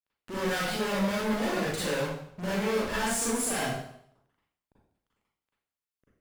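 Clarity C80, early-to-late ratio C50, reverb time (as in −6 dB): 2.5 dB, −2.5 dB, 0.70 s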